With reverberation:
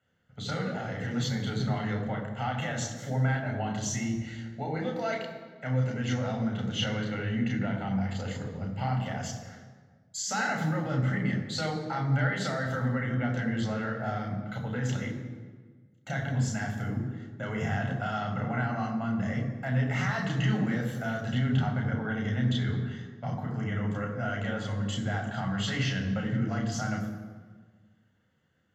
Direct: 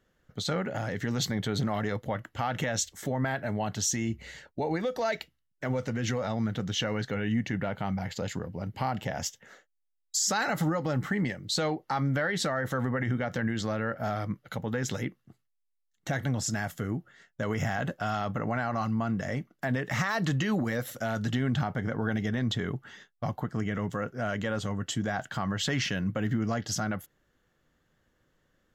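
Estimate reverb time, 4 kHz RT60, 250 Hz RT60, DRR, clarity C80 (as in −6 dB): 1.5 s, 1.1 s, 1.8 s, 0.5 dB, 7.5 dB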